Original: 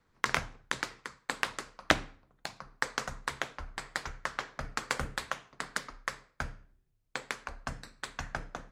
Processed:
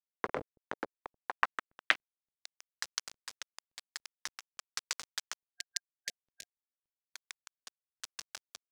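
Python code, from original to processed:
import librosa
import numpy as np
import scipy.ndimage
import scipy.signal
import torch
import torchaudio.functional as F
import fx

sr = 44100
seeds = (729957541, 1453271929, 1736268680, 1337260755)

y = fx.delta_hold(x, sr, step_db=-27.0)
y = fx.spec_erase(y, sr, start_s=5.44, length_s=1.32, low_hz=730.0, high_hz=1600.0)
y = fx.tremolo_random(y, sr, seeds[0], hz=3.5, depth_pct=55)
y = fx.filter_sweep_bandpass(y, sr, from_hz=480.0, to_hz=5800.0, start_s=0.91, end_s=2.48, q=1.7)
y = y * 10.0 ** (8.0 / 20.0)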